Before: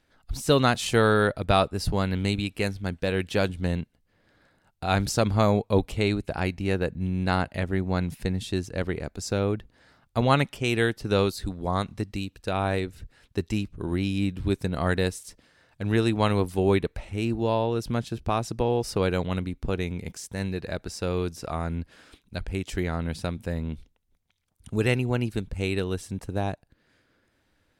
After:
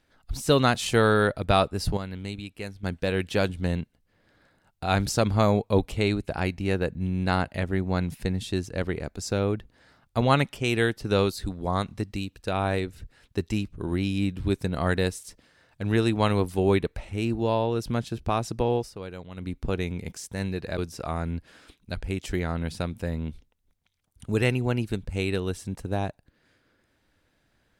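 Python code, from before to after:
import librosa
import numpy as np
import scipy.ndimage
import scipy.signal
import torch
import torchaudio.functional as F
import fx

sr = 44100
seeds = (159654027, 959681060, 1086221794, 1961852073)

y = fx.edit(x, sr, fx.clip_gain(start_s=1.97, length_s=0.86, db=-9.0),
    fx.fade_down_up(start_s=18.76, length_s=0.74, db=-13.5, fade_s=0.14),
    fx.cut(start_s=20.78, length_s=0.44), tone=tone)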